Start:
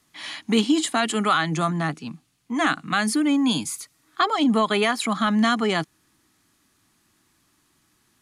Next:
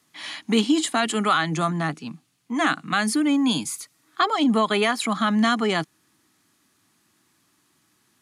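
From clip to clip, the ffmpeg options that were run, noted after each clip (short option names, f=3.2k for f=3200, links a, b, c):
-af "highpass=110"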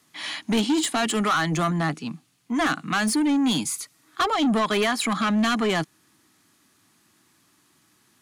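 -af "asoftclip=type=tanh:threshold=-20.5dB,volume=3dB"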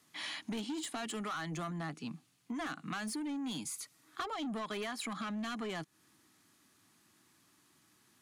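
-af "acompressor=threshold=-32dB:ratio=6,volume=-6dB"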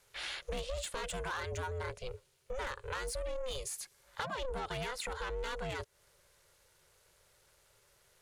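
-af "aeval=exprs='val(0)*sin(2*PI*260*n/s)':c=same,volume=3.5dB"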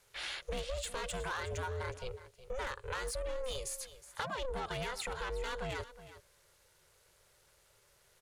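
-af "aecho=1:1:366:0.178"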